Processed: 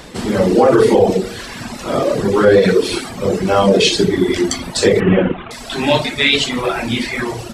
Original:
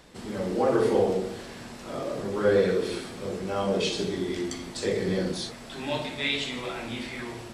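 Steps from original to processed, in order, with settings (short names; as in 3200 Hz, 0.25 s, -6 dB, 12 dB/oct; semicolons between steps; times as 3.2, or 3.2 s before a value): 5–5.51 CVSD 16 kbps; reverb removal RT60 1.2 s; maximiser +18.5 dB; gain -1 dB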